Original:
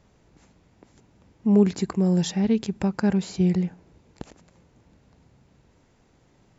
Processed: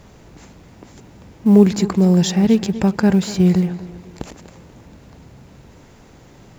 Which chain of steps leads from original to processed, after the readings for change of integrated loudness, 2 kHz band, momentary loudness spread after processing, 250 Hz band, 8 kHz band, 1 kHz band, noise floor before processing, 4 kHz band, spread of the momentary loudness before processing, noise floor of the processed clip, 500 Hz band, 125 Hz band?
+7.5 dB, +8.0 dB, 13 LU, +7.5 dB, can't be measured, +8.0 dB, −61 dBFS, +8.5 dB, 8 LU, −46 dBFS, +7.5 dB, +7.5 dB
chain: mu-law and A-law mismatch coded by mu
on a send: tape delay 245 ms, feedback 42%, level −14 dB, low-pass 4,700 Hz
on the sum: level +7 dB

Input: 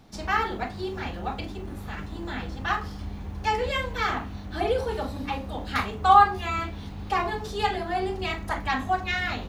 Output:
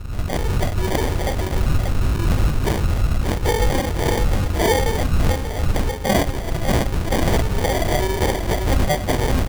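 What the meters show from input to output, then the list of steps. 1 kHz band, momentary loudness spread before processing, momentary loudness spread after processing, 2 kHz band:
−2.0 dB, 12 LU, 3 LU, +2.0 dB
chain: phase distortion by the signal itself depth 0.8 ms
wind on the microphone 86 Hz −27 dBFS
repeating echo 588 ms, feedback 49%, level −5.5 dB
automatic gain control gain up to 11.5 dB
high-shelf EQ 5,200 Hz +10 dB
in parallel at −4 dB: log-companded quantiser 4 bits
on the sum: phase shifter 0.42 Hz, delay 2.4 ms, feedback 26%
decimation without filtering 33×
boost into a limiter +1 dB
level −8.5 dB

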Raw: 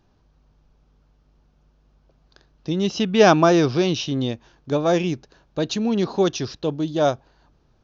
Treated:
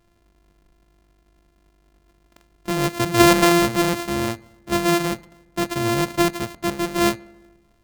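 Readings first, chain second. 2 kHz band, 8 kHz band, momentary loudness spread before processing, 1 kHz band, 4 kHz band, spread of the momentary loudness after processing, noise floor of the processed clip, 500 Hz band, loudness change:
+4.5 dB, can't be measured, 14 LU, +2.0 dB, +2.5 dB, 14 LU, −61 dBFS, −2.5 dB, +0.5 dB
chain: samples sorted by size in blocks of 128 samples
feedback echo with a low-pass in the loop 73 ms, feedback 69%, low-pass 3,100 Hz, level −23 dB

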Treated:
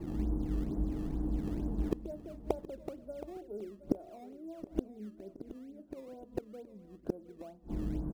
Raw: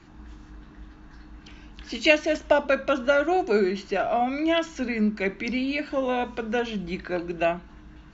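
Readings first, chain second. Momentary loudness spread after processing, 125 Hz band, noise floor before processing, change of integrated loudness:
13 LU, −0.5 dB, −48 dBFS, −14.5 dB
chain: transistor ladder low-pass 680 Hz, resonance 25%
low-shelf EQ 70 Hz −3 dB
in parallel at −12 dB: sample-and-hold swept by an LFO 17×, swing 160% 2.2 Hz
on the sum: gate with flip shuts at −31 dBFS, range −35 dB
repeating echo 721 ms, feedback 37%, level −14.5 dB
level +16.5 dB

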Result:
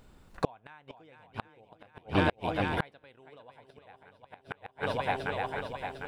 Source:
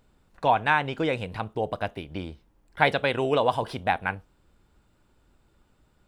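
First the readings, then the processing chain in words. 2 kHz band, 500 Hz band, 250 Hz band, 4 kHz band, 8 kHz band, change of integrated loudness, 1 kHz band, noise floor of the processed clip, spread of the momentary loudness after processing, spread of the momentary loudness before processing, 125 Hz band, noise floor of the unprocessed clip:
−8.0 dB, −8.0 dB, −3.0 dB, −7.5 dB, can't be measured, −7.0 dB, −8.5 dB, −65 dBFS, 23 LU, 14 LU, −3.0 dB, −65 dBFS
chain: feedback echo with a long and a short gap by turns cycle 752 ms, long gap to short 1.5 to 1, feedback 44%, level −6.5 dB
gate with flip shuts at −19 dBFS, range −37 dB
level +6 dB

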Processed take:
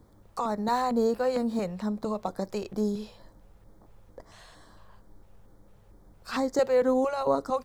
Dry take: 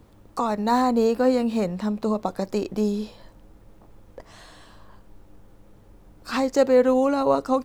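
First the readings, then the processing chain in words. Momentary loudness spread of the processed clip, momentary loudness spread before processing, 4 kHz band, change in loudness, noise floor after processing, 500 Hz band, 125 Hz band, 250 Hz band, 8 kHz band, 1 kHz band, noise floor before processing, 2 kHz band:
10 LU, 10 LU, −5.5 dB, −5.5 dB, −57 dBFS, −5.0 dB, −5.5 dB, −7.0 dB, −4.5 dB, −5.0 dB, −52 dBFS, −5.0 dB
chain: auto-filter notch square 2.2 Hz 280–2,700 Hz
level −4.5 dB

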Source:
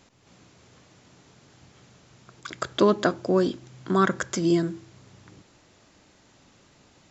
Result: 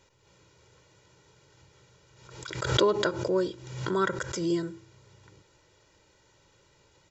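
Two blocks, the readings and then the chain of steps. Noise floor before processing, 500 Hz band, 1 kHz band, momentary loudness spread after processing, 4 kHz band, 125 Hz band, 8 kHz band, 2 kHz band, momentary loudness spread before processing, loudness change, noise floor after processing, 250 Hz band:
−59 dBFS, −3.0 dB, −4.5 dB, 14 LU, +2.5 dB, −3.0 dB, can't be measured, −2.5 dB, 19 LU, −4.0 dB, −64 dBFS, −7.0 dB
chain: comb filter 2.1 ms, depth 79%
background raised ahead of every attack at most 60 dB per second
level −7 dB

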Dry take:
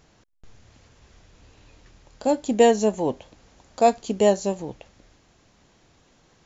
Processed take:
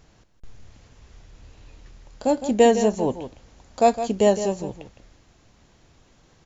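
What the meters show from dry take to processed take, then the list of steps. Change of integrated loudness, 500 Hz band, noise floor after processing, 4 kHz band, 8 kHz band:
+0.5 dB, +0.5 dB, −58 dBFS, +0.5 dB, can't be measured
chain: low-shelf EQ 93 Hz +8 dB
on a send: single-tap delay 161 ms −11 dB

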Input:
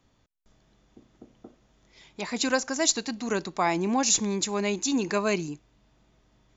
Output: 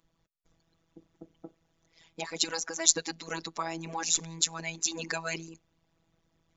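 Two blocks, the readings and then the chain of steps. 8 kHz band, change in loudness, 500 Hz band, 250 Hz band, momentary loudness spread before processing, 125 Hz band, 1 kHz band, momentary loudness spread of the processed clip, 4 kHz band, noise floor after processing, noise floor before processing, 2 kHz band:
can't be measured, −4.0 dB, −11.0 dB, −13.5 dB, 9 LU, −7.0 dB, −8.0 dB, 14 LU, −1.0 dB, −76 dBFS, −66 dBFS, −5.0 dB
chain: phases set to zero 164 Hz
harmonic and percussive parts rebalanced harmonic −16 dB
level +5 dB

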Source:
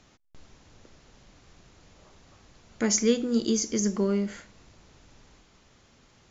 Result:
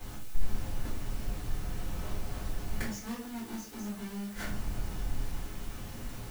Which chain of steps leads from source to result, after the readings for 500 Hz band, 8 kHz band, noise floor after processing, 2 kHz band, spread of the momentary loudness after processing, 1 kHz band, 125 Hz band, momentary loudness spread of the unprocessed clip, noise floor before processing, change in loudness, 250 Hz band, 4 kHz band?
−16.0 dB, can't be measured, −44 dBFS, −2.0 dB, 5 LU, +1.0 dB, +1.5 dB, 7 LU, −60 dBFS, −14.0 dB, −11.0 dB, −9.5 dB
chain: each half-wave held at its own peak
gate with flip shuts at −24 dBFS, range −29 dB
bit-depth reduction 10 bits, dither triangular
rectangular room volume 31 cubic metres, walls mixed, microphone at 2.5 metres
level −5 dB

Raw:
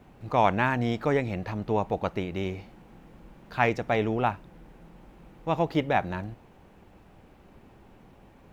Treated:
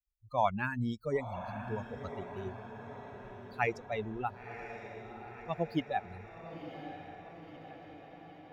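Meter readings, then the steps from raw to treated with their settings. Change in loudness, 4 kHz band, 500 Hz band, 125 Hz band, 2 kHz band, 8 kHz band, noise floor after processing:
−10.0 dB, −9.5 dB, −8.5 dB, −9.0 dB, −8.0 dB, can't be measured, −54 dBFS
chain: spectral dynamics exaggerated over time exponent 3
feedback delay with all-pass diffusion 1,014 ms, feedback 62%, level −10 dB
level −2.5 dB

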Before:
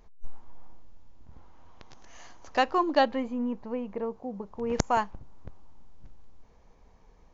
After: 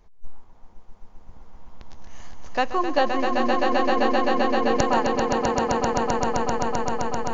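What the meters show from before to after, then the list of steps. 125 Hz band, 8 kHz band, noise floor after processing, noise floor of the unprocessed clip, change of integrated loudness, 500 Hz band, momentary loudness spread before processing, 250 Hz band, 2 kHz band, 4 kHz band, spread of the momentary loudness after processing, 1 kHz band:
+8.5 dB, can't be measured, −46 dBFS, −58 dBFS, +6.0 dB, +9.0 dB, 11 LU, +7.5 dB, +9.0 dB, +8.0 dB, 5 LU, +8.5 dB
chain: tape wow and flutter 26 cents
echo that builds up and dies away 130 ms, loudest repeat 8, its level −4.5 dB
level +1 dB

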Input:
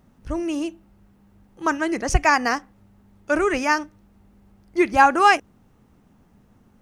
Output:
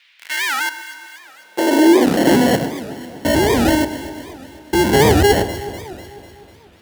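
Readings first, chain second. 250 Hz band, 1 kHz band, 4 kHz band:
+10.5 dB, −1.0 dB, +10.5 dB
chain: spectrum averaged block by block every 100 ms
in parallel at −4 dB: fuzz pedal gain 45 dB, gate −39 dBFS
on the sum: decimation without filtering 36×
noise in a band 330–4,000 Hz −57 dBFS
high-pass filter sweep 2,200 Hz → 72 Hz, 0:00.21–0:03.21
on a send: delay that swaps between a low-pass and a high-pass 124 ms, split 1,500 Hz, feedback 74%, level −10.5 dB
on the sum: wow of a warped record 78 rpm, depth 250 cents

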